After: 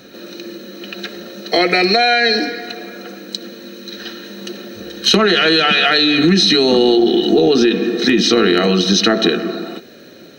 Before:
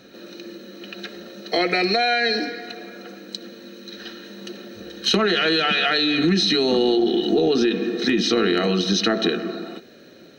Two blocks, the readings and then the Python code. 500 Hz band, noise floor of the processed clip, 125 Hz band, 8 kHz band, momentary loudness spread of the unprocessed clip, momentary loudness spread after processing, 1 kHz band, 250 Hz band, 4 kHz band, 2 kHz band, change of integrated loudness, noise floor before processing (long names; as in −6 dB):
+6.5 dB, −40 dBFS, +6.5 dB, +8.5 dB, 20 LU, 20 LU, +6.5 dB, +6.5 dB, +7.5 dB, +6.5 dB, +7.0 dB, −47 dBFS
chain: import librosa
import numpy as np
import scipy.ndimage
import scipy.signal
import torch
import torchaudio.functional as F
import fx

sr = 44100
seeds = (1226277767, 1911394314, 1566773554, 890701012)

y = fx.high_shelf(x, sr, hz=9000.0, db=6.5)
y = y * librosa.db_to_amplitude(6.5)